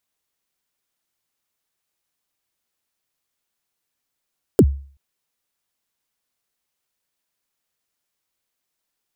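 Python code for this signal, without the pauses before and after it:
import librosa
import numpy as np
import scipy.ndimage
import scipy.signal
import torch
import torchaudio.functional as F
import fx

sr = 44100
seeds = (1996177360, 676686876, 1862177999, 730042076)

y = fx.drum_kick(sr, seeds[0], length_s=0.38, level_db=-4.5, start_hz=490.0, end_hz=69.0, sweep_ms=57.0, decay_s=0.44, click=True)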